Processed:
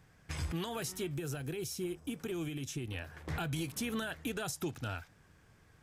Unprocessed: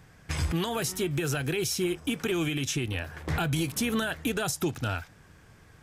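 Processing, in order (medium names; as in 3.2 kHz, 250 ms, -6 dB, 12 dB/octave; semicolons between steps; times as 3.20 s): 1.14–2.88 s: peaking EQ 2.3 kHz -6.5 dB 2.9 oct; trim -8.5 dB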